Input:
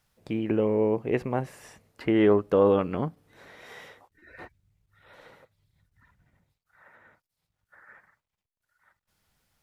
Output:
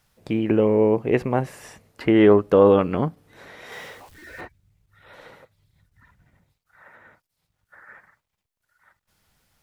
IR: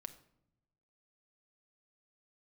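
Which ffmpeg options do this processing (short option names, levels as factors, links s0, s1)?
-filter_complex "[0:a]asettb=1/sr,asplit=3[s0][s1][s2];[s0]atrim=end=3.724[s3];[s1]atrim=start=3.72:end=4.41,asetpts=PTS-STARTPTS,afade=t=in:d=0.004:c=qsin,afade=t=out:st=0.686:d=0.004:c=qsin,aeval=exprs='val(0)+0.5*0.00299*sgn(val(0))':c=same[s4];[s2]atrim=start=4.406[s5];[s3][s4]acrossfade=d=0.004:c1=hsin:c2=qsin[s6];[s6][s5]acrossfade=d=0.004:c1=qsin:c2=hsin,volume=2"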